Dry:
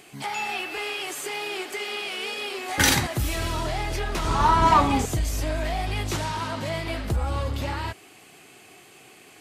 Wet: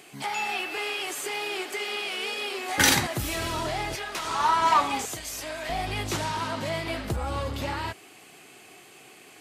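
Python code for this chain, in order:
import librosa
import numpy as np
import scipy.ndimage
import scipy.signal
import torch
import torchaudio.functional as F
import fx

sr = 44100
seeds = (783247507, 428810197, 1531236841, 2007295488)

y = fx.highpass(x, sr, hz=fx.steps((0.0, 160.0), (3.95, 990.0), (5.69, 130.0)), slope=6)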